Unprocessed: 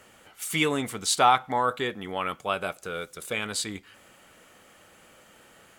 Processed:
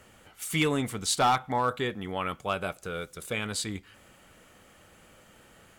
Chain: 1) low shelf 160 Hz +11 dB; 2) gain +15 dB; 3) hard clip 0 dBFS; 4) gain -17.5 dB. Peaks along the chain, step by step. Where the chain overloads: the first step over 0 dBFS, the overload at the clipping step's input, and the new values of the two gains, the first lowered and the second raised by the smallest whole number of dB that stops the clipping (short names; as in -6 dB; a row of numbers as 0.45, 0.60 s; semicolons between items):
-7.0, +8.0, 0.0, -17.5 dBFS; step 2, 8.0 dB; step 2 +7 dB, step 4 -9.5 dB